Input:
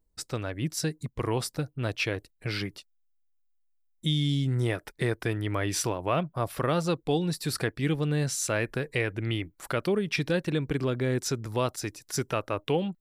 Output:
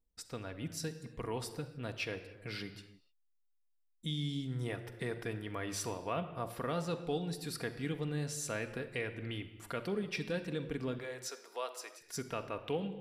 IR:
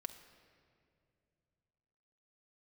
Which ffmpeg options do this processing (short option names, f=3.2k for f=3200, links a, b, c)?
-filter_complex "[0:a]asettb=1/sr,asplit=3[a][b][c];[a]atrim=end=10.984[d];[b]atrim=start=10.98:end=12.01,asetpts=PTS-STARTPTS,afade=t=in:d=0.004:c=qsin,afade=t=out:st=1.026:d=0.004:c=qsin,highpass=f=480:w=0.5412,highpass=f=480:w=1.3066[e];[c]atrim=start=12.006[f];[d][e]acrossfade=d=0.004:c1=hsin:c2=qsin[g];[g][f]acrossfade=d=0.004:c1=qsin:c2=hsin[h];[1:a]atrim=start_sample=2205,afade=t=out:st=0.36:d=0.01,atrim=end_sample=16317[i];[h][i]afir=irnorm=-1:irlink=0,volume=-6dB"